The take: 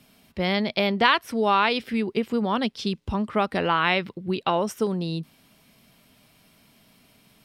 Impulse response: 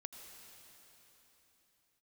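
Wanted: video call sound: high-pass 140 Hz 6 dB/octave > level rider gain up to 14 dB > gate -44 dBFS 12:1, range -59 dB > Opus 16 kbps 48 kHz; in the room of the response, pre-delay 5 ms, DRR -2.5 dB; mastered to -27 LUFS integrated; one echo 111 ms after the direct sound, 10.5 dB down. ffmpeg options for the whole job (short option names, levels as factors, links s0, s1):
-filter_complex "[0:a]aecho=1:1:111:0.299,asplit=2[s0][s1];[1:a]atrim=start_sample=2205,adelay=5[s2];[s1][s2]afir=irnorm=-1:irlink=0,volume=2.11[s3];[s0][s3]amix=inputs=2:normalize=0,highpass=f=140:p=1,dynaudnorm=m=5.01,agate=range=0.00112:threshold=0.00631:ratio=12,volume=0.422" -ar 48000 -c:a libopus -b:a 16k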